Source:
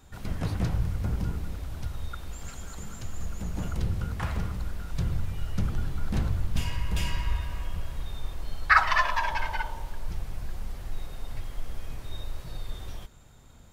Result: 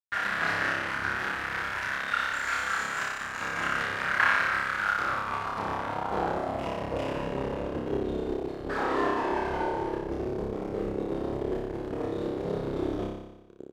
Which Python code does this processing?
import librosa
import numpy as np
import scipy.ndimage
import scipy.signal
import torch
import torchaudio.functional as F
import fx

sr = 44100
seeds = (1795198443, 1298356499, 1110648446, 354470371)

y = fx.fuzz(x, sr, gain_db=46.0, gate_db=-43.0)
y = fx.filter_sweep_bandpass(y, sr, from_hz=1600.0, to_hz=380.0, start_s=4.66, end_s=7.66, q=3.2)
y = fx.room_flutter(y, sr, wall_m=5.1, rt60_s=1.0)